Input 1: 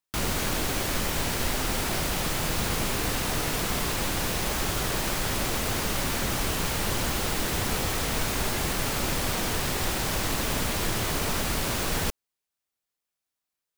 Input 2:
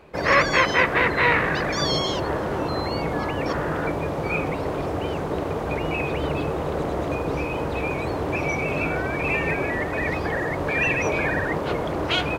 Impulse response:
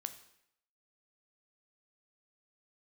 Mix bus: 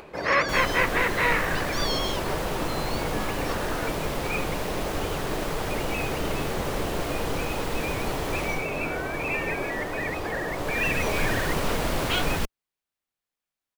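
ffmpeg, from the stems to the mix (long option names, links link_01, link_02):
-filter_complex "[0:a]bass=frequency=250:gain=6,treble=frequency=4000:gain=-6,adelay=350,volume=8dB,afade=type=out:start_time=8.44:duration=0.23:silence=0.398107,afade=type=in:start_time=10.48:duration=0.7:silence=0.266073[link_01];[1:a]acompressor=mode=upward:threshold=-32dB:ratio=2.5,volume=-4dB[link_02];[link_01][link_02]amix=inputs=2:normalize=0,equalizer=frequency=81:width_type=o:width=2.8:gain=-6"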